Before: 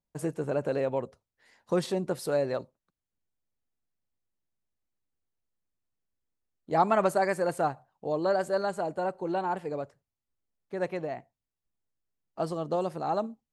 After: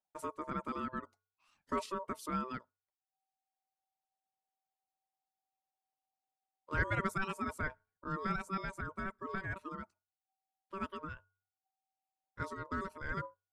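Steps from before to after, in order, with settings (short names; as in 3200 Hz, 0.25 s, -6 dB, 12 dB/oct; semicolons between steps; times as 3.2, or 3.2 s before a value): de-hum 337.2 Hz, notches 2; reverb removal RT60 0.84 s; ring modulator 770 Hz; gain -6 dB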